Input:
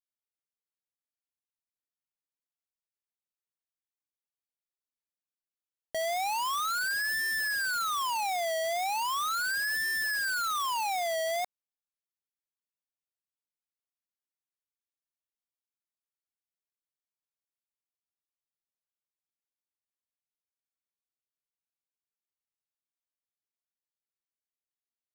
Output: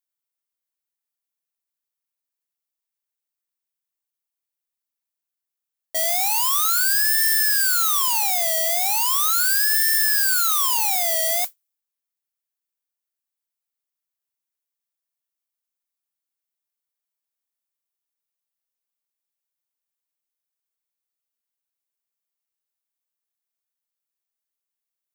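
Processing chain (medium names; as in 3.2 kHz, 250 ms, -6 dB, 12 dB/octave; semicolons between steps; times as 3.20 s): modulation noise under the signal 14 dB; RIAA curve recording; tape noise reduction on one side only decoder only; trim +3 dB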